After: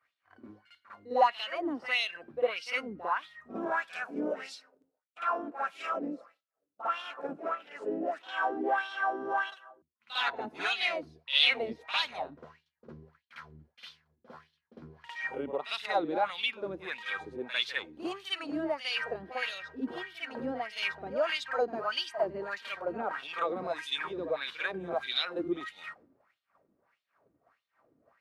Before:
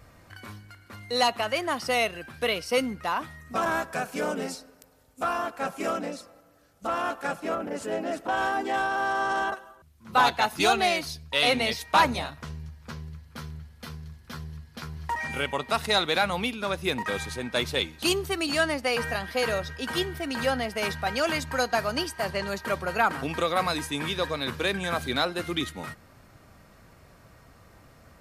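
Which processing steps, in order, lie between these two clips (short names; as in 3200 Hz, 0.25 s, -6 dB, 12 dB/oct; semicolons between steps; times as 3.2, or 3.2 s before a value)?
wah 1.6 Hz 280–3600 Hz, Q 4; expander -58 dBFS; reverse echo 53 ms -10.5 dB; gain +4 dB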